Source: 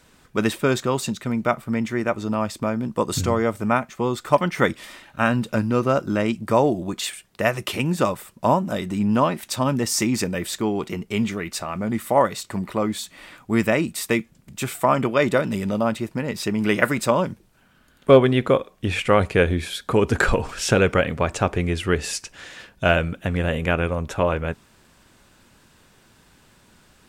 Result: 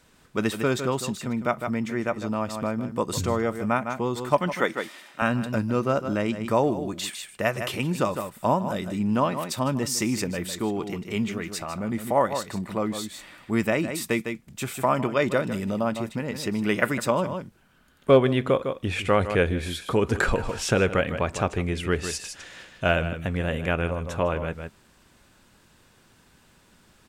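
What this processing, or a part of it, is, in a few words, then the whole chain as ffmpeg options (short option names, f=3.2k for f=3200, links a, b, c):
ducked delay: -filter_complex "[0:a]asettb=1/sr,asplit=3[a][b][c];[a]atrim=end=4.554[d];[b]atrim=start=4.55:end=5.22,asetpts=PTS-STARTPTS,afade=t=in:d=0.004:c=qsin,afade=t=out:st=0.666:d=0.004:c=qsin,highpass=280[e];[c]atrim=start=5.216[f];[d][e]acrossfade=d=0.004:c1=hsin:c2=qsin[g];[g][f]acrossfade=d=0.004:c1=qsin:c2=hsin,asplit=3[h][i][j];[i]adelay=155,volume=-6dB[k];[j]apad=whole_len=1201456[l];[k][l]sidechaincompress=threshold=-28dB:ratio=8:attack=5.4:release=106[m];[h][m]amix=inputs=2:normalize=0,volume=-4dB"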